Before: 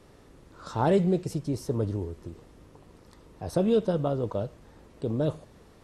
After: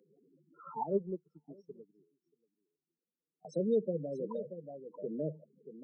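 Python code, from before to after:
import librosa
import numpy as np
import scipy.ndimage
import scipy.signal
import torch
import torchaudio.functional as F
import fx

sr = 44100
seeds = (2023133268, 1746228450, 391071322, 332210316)

y = fx.spec_topn(x, sr, count=8)
y = scipy.signal.sosfilt(scipy.signal.cheby1(6, 1.0, 150.0, 'highpass', fs=sr, output='sos'), y)
y = fx.low_shelf(y, sr, hz=360.0, db=-11.0)
y = y + 10.0 ** (-11.5 / 20.0) * np.pad(y, (int(632 * sr / 1000.0), 0))[:len(y)]
y = fx.filter_lfo_notch(y, sr, shape='sine', hz=0.41, low_hz=690.0, high_hz=2500.0, q=2.2)
y = fx.dynamic_eq(y, sr, hz=620.0, q=3.6, threshold_db=-45.0, ratio=4.0, max_db=-5)
y = fx.upward_expand(y, sr, threshold_db=-46.0, expansion=2.5, at=(0.83, 3.45))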